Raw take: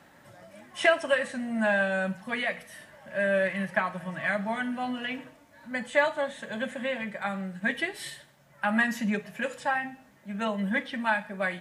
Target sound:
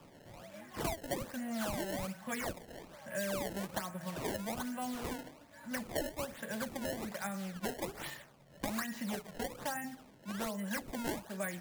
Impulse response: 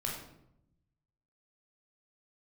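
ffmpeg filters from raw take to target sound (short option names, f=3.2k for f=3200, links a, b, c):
-filter_complex "[0:a]acrusher=samples=21:mix=1:aa=0.000001:lfo=1:lforange=33.6:lforate=1.2,acrossover=split=410|2800|6500[a][b][c][d];[a]acompressor=threshold=-40dB:ratio=4[e];[b]acompressor=threshold=-40dB:ratio=4[f];[c]acompressor=threshold=-53dB:ratio=4[g];[d]acompressor=threshold=-42dB:ratio=4[h];[e][f][g][h]amix=inputs=4:normalize=0,volume=-1dB"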